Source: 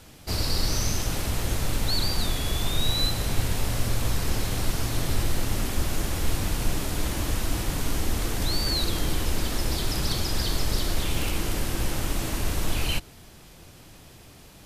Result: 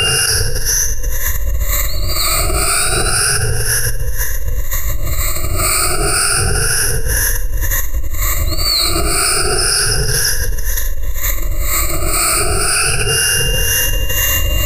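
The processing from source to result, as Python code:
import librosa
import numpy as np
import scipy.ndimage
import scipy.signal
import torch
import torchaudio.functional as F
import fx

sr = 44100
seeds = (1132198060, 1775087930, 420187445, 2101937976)

p1 = fx.spec_ripple(x, sr, per_octave=1.1, drift_hz=0.31, depth_db=23)
p2 = fx.harmonic_tremolo(p1, sr, hz=2.0, depth_pct=70, crossover_hz=830.0)
p3 = fx.rider(p2, sr, range_db=10, speed_s=0.5)
p4 = p2 + F.gain(torch.from_numpy(p3), 2.0).numpy()
p5 = p4 + 10.0 ** (-26.0 / 20.0) * np.sin(2.0 * np.pi * 2800.0 * np.arange(len(p4)) / sr)
p6 = 10.0 ** (-1.5 / 20.0) * np.tanh(p5 / 10.0 ** (-1.5 / 20.0))
p7 = fx.peak_eq(p6, sr, hz=280.0, db=-8.0, octaves=3.0)
p8 = fx.fixed_phaser(p7, sr, hz=860.0, stages=6)
p9 = fx.room_early_taps(p8, sr, ms=(22, 77), db=(-10.5, -7.5))
p10 = fx.env_flatten(p9, sr, amount_pct=100)
y = F.gain(torch.from_numpy(p10), -9.0).numpy()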